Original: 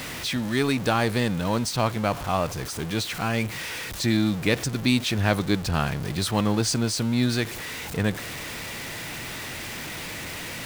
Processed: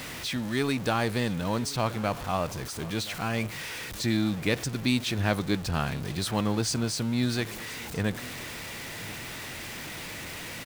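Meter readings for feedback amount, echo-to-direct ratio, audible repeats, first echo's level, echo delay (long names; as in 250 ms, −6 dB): repeats not evenly spaced, −19.0 dB, 1, −19.0 dB, 1,026 ms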